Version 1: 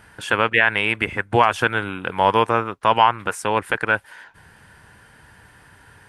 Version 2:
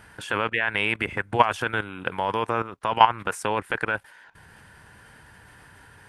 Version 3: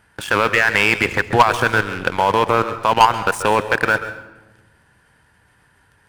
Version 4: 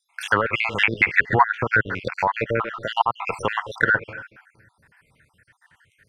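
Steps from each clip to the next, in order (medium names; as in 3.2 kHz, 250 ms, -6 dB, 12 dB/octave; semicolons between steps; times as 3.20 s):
level held to a coarse grid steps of 13 dB; trim +1.5 dB
waveshaping leveller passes 3; reverberation RT60 1.1 s, pre-delay 133 ms, DRR 11 dB; trim -1 dB
random holes in the spectrogram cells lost 58%; low-pass that closes with the level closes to 1.5 kHz, closed at -14.5 dBFS; ten-band graphic EQ 125 Hz +4 dB, 2 kHz +11 dB, 16 kHz +4 dB; trim -4.5 dB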